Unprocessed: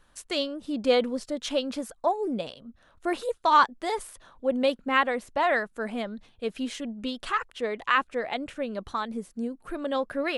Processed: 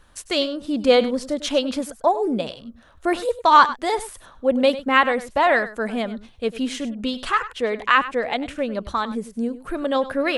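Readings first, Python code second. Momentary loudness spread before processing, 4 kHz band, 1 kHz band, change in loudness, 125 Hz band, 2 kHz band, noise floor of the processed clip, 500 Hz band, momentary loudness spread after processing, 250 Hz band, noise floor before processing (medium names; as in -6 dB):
11 LU, +6.5 dB, +6.5 dB, +6.5 dB, no reading, +6.5 dB, -50 dBFS, +6.5 dB, 11 LU, +7.0 dB, -62 dBFS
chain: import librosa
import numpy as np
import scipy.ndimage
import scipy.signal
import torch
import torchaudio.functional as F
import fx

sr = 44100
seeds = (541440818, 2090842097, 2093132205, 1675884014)

y = fx.peak_eq(x, sr, hz=62.0, db=7.5, octaves=0.77)
y = y + 10.0 ** (-15.0 / 20.0) * np.pad(y, (int(99 * sr / 1000.0), 0))[:len(y)]
y = y * librosa.db_to_amplitude(6.5)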